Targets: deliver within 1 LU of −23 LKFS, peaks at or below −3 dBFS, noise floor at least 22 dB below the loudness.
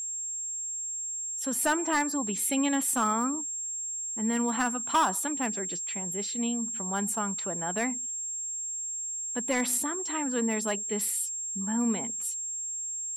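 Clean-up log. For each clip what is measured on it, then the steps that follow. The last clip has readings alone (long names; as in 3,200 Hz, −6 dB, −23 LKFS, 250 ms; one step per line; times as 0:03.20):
share of clipped samples 0.2%; peaks flattened at −19.0 dBFS; interfering tone 7,500 Hz; level of the tone −32 dBFS; integrated loudness −29.0 LKFS; sample peak −19.0 dBFS; target loudness −23.0 LKFS
→ clipped peaks rebuilt −19 dBFS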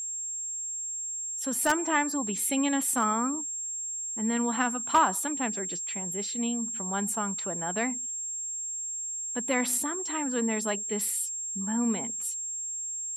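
share of clipped samples 0.0%; interfering tone 7,500 Hz; level of the tone −32 dBFS
→ notch filter 7,500 Hz, Q 30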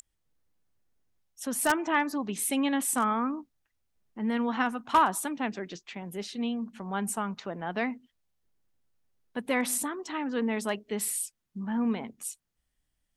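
interfering tone none found; integrated loudness −30.5 LKFS; sample peak −9.5 dBFS; target loudness −23.0 LKFS
→ level +7.5 dB
brickwall limiter −3 dBFS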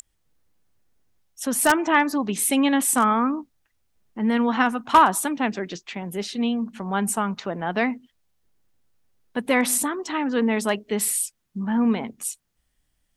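integrated loudness −23.0 LKFS; sample peak −3.0 dBFS; background noise floor −73 dBFS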